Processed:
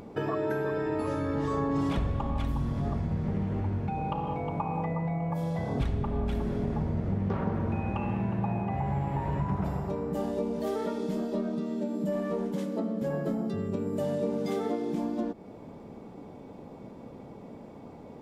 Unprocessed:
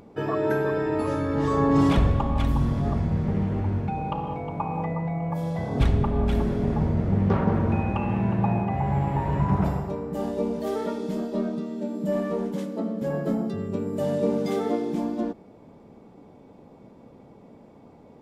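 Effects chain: compressor 3:1, threshold -34 dBFS, peak gain reduction 13.5 dB; gain +4 dB

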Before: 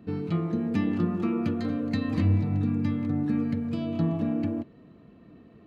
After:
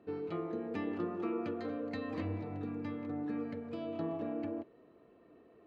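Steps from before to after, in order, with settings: LPF 2100 Hz 6 dB/oct; resonant low shelf 280 Hz -12 dB, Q 1.5; gain -4.5 dB

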